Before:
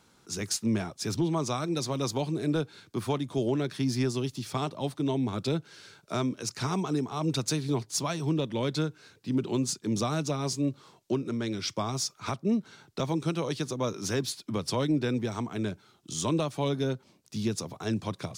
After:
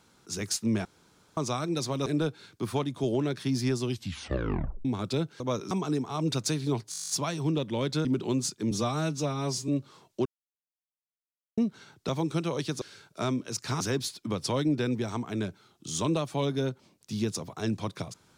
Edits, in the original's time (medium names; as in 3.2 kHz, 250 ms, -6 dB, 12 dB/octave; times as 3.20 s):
0.85–1.37 s: room tone
2.06–2.40 s: delete
4.19 s: tape stop 1.00 s
5.74–6.73 s: swap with 13.73–14.04 s
7.92 s: stutter 0.02 s, 11 plays
8.87–9.29 s: delete
9.95–10.60 s: stretch 1.5×
11.17–12.49 s: mute